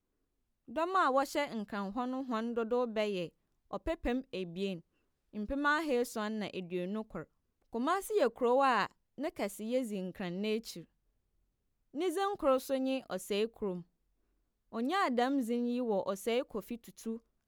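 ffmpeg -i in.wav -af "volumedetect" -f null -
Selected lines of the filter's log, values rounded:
mean_volume: -35.3 dB
max_volume: -16.3 dB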